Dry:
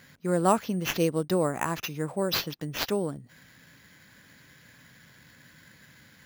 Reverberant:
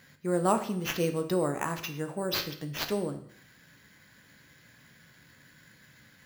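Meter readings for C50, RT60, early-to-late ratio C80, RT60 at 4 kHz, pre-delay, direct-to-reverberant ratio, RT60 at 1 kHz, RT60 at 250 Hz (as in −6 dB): 11.5 dB, 0.60 s, 14.5 dB, 0.60 s, 12 ms, 6.5 dB, 0.60 s, 0.65 s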